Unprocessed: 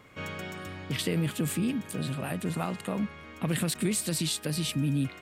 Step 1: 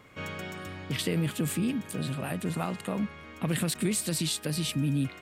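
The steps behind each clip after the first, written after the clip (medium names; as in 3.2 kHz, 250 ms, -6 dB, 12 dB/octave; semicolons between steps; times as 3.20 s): no audible change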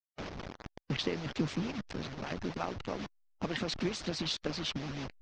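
send-on-delta sampling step -31 dBFS; steep low-pass 6.1 kHz 48 dB/octave; harmonic-percussive split harmonic -15 dB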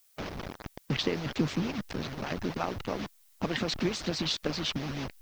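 added noise blue -68 dBFS; trim +4 dB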